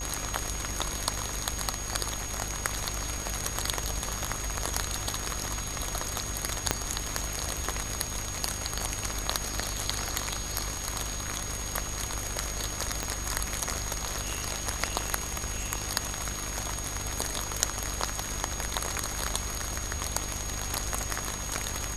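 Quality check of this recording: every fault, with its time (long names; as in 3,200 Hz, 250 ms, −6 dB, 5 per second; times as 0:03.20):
mains buzz 50 Hz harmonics 31 −39 dBFS
whistle 6,600 Hz −37 dBFS
0:06.71: click −6 dBFS
0:13.03: click −14 dBFS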